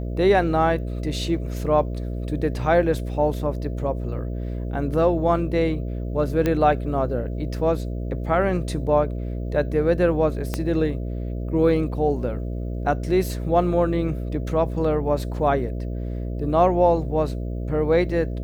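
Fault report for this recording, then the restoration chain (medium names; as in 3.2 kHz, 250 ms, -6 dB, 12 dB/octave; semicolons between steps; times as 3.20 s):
buzz 60 Hz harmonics 11 -28 dBFS
6.46 s: pop -10 dBFS
10.54 s: pop -10 dBFS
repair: de-click; de-hum 60 Hz, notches 11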